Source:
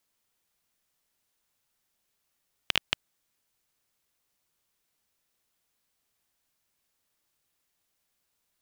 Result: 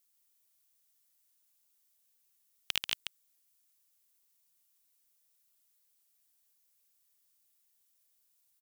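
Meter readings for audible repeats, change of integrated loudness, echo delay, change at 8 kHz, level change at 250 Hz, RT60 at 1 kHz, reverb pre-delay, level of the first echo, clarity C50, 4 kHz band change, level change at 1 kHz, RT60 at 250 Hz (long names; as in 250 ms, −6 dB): 1, −5.0 dB, 137 ms, +2.0 dB, −11.0 dB, no reverb audible, no reverb audible, −6.0 dB, no reverb audible, −4.0 dB, −9.5 dB, no reverb audible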